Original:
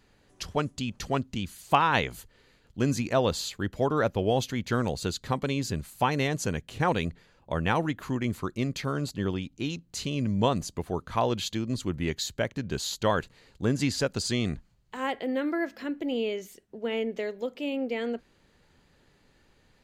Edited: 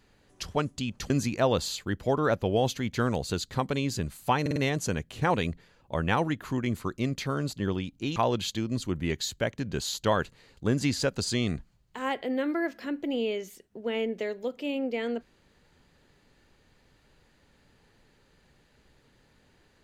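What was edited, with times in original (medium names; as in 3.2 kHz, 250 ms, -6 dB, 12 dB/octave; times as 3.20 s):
1.10–2.83 s: delete
6.14 s: stutter 0.05 s, 4 plays
9.74–11.14 s: delete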